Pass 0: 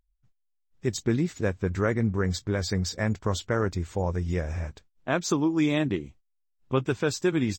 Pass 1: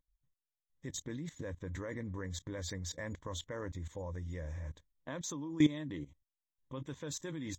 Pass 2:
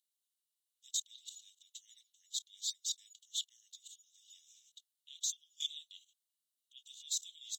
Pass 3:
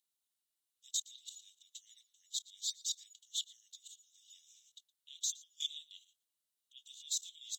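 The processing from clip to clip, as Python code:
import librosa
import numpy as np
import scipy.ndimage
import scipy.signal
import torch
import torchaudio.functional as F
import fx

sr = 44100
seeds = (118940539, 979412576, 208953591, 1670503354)

y1 = fx.ripple_eq(x, sr, per_octave=1.1, db=11)
y1 = fx.level_steps(y1, sr, step_db=18)
y1 = y1 * 10.0 ** (-4.5 / 20.0)
y2 = scipy.signal.sosfilt(scipy.signal.cheby1(6, 6, 2800.0, 'highpass', fs=sr, output='sos'), y1)
y2 = y2 * 10.0 ** (10.5 / 20.0)
y3 = y2 + 10.0 ** (-21.5 / 20.0) * np.pad(y2, (int(116 * sr / 1000.0), 0))[:len(y2)]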